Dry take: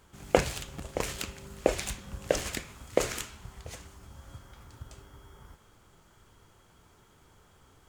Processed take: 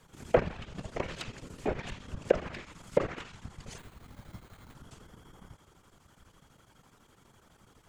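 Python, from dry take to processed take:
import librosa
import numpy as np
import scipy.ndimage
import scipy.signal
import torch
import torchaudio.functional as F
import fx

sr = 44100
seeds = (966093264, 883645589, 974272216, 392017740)

y = fx.chopper(x, sr, hz=12.0, depth_pct=65, duty_pct=80)
y = fx.whisperise(y, sr, seeds[0])
y = fx.env_lowpass_down(y, sr, base_hz=1700.0, full_db=-28.5)
y = fx.sample_hold(y, sr, seeds[1], rate_hz=5400.0, jitter_pct=0, at=(3.78, 4.75))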